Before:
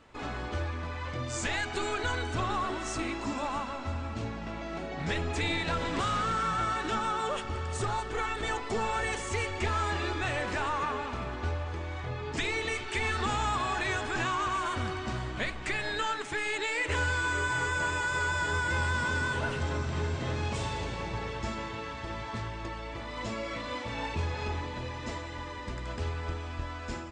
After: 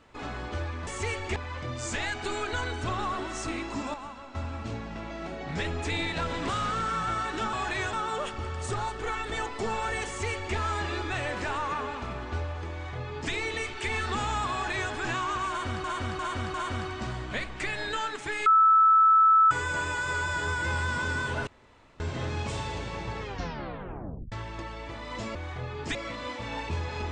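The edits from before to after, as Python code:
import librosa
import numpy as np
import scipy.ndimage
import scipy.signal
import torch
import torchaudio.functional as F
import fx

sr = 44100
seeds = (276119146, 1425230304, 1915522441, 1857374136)

y = fx.edit(x, sr, fx.clip_gain(start_s=3.45, length_s=0.41, db=-7.5),
    fx.duplicate(start_s=9.18, length_s=0.49, to_s=0.87),
    fx.duplicate(start_s=11.83, length_s=0.6, to_s=23.41),
    fx.duplicate(start_s=13.63, length_s=0.4, to_s=7.04),
    fx.repeat(start_s=14.6, length_s=0.35, count=4),
    fx.bleep(start_s=16.52, length_s=1.05, hz=1310.0, db=-15.5),
    fx.room_tone_fill(start_s=19.53, length_s=0.53),
    fx.tape_stop(start_s=21.26, length_s=1.12), tone=tone)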